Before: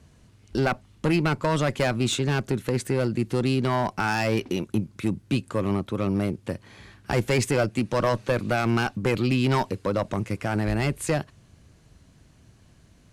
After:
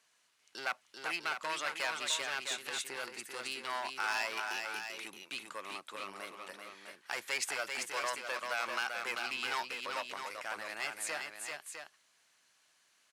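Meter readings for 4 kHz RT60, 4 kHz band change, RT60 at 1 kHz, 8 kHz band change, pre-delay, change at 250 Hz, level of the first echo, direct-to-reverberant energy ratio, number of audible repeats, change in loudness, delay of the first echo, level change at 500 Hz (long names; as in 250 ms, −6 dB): no reverb audible, −4.0 dB, no reverb audible, −4.0 dB, no reverb audible, −29.5 dB, −5.0 dB, no reverb audible, 2, −11.5 dB, 390 ms, −18.5 dB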